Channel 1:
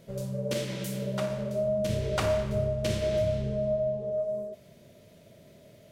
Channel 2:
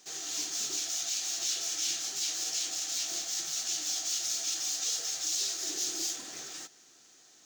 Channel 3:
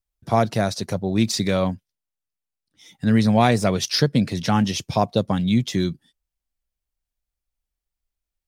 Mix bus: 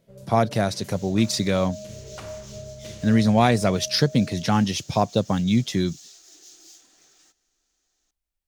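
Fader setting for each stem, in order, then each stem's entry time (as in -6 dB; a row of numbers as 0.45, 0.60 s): -10.5, -15.5, -1.0 dB; 0.00, 0.65, 0.00 s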